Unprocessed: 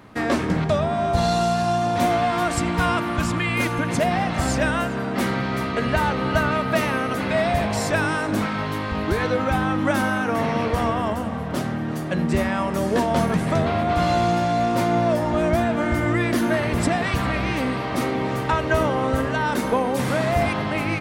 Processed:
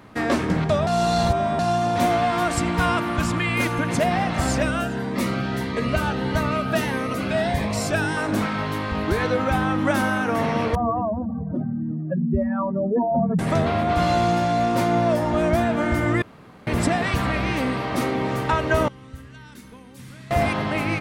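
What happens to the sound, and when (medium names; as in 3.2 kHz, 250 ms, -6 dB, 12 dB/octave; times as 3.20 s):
0.87–1.59 s: reverse
4.62–8.17 s: Shepard-style phaser rising 1.6 Hz
10.75–13.39 s: spectral contrast enhancement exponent 2.7
16.22–16.67 s: room tone
18.88–20.31 s: amplifier tone stack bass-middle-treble 6-0-2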